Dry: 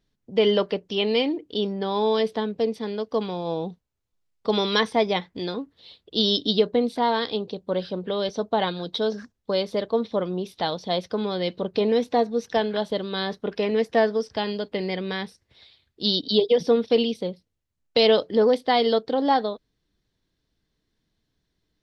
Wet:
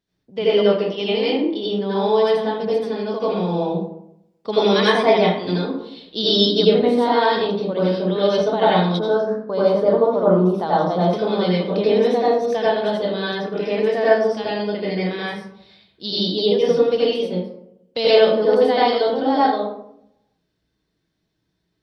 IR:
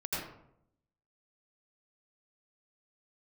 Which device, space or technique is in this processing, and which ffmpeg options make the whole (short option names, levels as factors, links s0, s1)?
far laptop microphone: -filter_complex "[1:a]atrim=start_sample=2205[s0];[0:a][s0]afir=irnorm=-1:irlink=0,highpass=f=130:p=1,dynaudnorm=f=850:g=7:m=3.76,asettb=1/sr,asplit=3[s1][s2][s3];[s1]atrim=end=8.994[s4];[s2]atrim=start=8.99:end=11.13,asetpts=PTS-STARTPTS,afade=t=in:d=0.004:c=qsin,afade=t=out:st=2.136:d=0.004:c=qsin,highshelf=f=1700:t=q:w=1.5:g=-10[s5];[s3]atrim=start=11.126[s6];[s4][s5]acrossfade=d=0.004:c1=hsin:c2=qsin[s7];[s7][s6]acrossfade=d=0.004:c1=qsin:c2=hsin,volume=0.891"